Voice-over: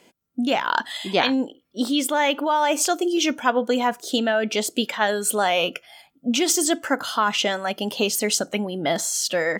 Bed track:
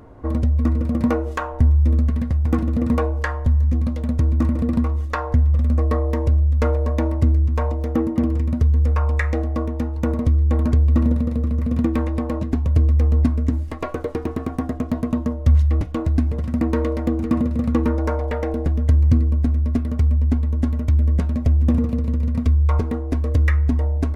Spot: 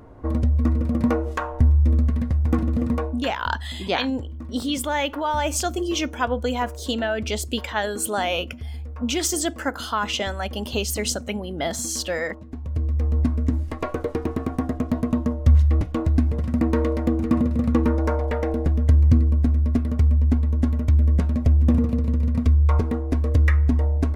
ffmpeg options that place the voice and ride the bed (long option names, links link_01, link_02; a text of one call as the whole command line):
ffmpeg -i stem1.wav -i stem2.wav -filter_complex "[0:a]adelay=2750,volume=-3.5dB[link_01];[1:a]volume=15dB,afade=type=out:start_time=2.72:duration=0.64:silence=0.16788,afade=type=in:start_time=12.45:duration=1.23:silence=0.149624[link_02];[link_01][link_02]amix=inputs=2:normalize=0" out.wav